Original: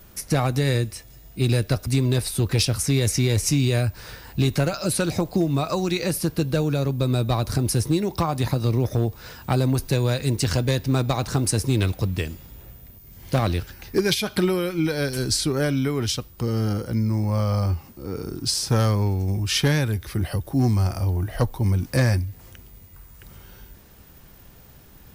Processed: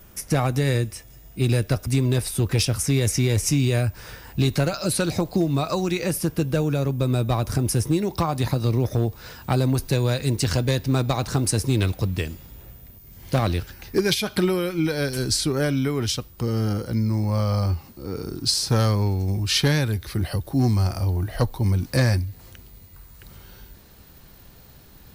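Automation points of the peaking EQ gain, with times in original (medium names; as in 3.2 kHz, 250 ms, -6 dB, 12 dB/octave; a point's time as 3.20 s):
peaking EQ 4.2 kHz 0.26 oct
-6 dB
from 4.41 s +2.5 dB
from 5.81 s -8 dB
from 7.99 s +0.5 dB
from 16.81 s +7 dB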